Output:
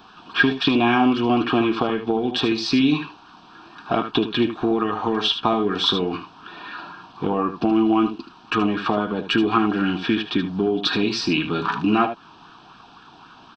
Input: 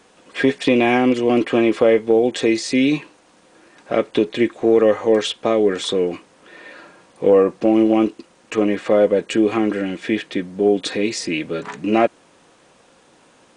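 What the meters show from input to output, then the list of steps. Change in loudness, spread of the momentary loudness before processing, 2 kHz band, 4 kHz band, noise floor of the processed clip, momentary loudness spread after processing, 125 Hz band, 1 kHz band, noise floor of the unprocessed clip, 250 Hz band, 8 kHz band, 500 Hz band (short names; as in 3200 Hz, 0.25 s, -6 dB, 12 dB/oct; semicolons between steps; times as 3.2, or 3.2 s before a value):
-3.0 dB, 9 LU, +1.0 dB, +4.5 dB, -48 dBFS, 10 LU, +2.0 dB, +2.5 dB, -54 dBFS, -1.5 dB, n/a, -8.5 dB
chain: downsampling 16000 Hz; compressor 3:1, threshold -20 dBFS, peak gain reduction 8.5 dB; fixed phaser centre 2000 Hz, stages 6; echo 76 ms -10 dB; LFO bell 3.8 Hz 630–1600 Hz +8 dB; gain +7 dB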